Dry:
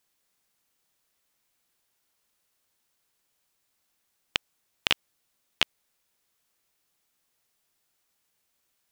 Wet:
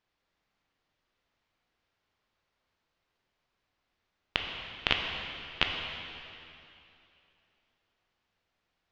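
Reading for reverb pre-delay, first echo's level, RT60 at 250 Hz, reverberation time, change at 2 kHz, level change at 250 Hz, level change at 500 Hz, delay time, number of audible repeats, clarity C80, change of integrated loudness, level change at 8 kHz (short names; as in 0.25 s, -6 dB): 6 ms, none, 2.8 s, 2.8 s, 0.0 dB, +2.5 dB, +2.0 dB, none, none, 4.0 dB, -3.0 dB, -14.5 dB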